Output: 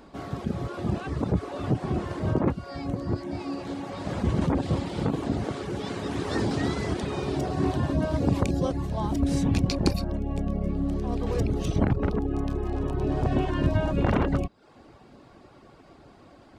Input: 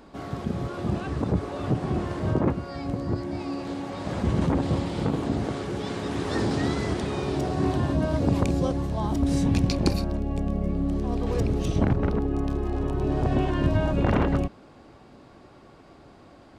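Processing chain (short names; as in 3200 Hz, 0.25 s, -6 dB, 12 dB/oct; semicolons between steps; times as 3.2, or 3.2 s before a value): reverb removal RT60 0.51 s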